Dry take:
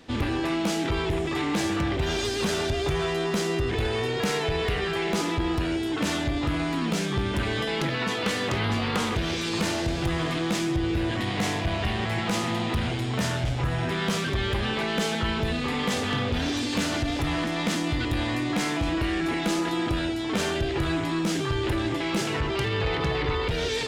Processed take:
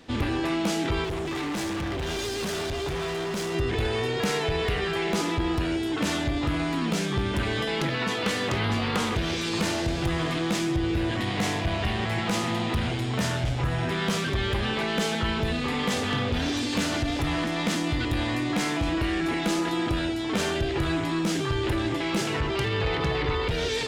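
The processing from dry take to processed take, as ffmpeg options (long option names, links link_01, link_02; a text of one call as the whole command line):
ffmpeg -i in.wav -filter_complex "[0:a]asettb=1/sr,asplit=3[link_01][link_02][link_03];[link_01]atrim=end=1.044[link_04];[link_02]atrim=start=1.04:end=3.55,asetpts=PTS-STARTPTS,afade=type=in:duration=0.004:curve=qsin,afade=type=out:start_time=2.506:duration=0.004:curve=qsin,asoftclip=type=hard:threshold=-27.5dB[link_05];[link_03]atrim=start=3.546[link_06];[link_04][link_05]acrossfade=duration=0.004:curve1=hsin:curve2=qsin[link_07];[link_07][link_06]acrossfade=duration=0.004:curve1=qsin:curve2=hsin" out.wav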